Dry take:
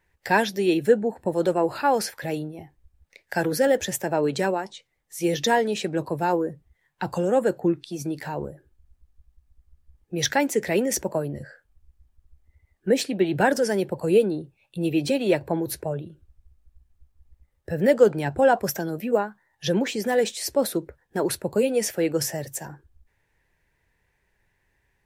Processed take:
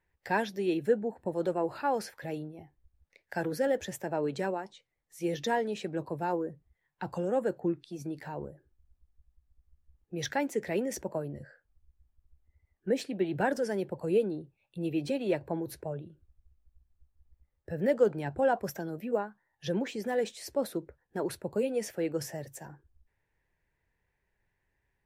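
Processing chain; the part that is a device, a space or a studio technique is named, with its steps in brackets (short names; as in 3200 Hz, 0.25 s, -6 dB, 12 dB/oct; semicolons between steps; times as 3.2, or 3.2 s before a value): behind a face mask (high shelf 3100 Hz -7 dB); gain -8 dB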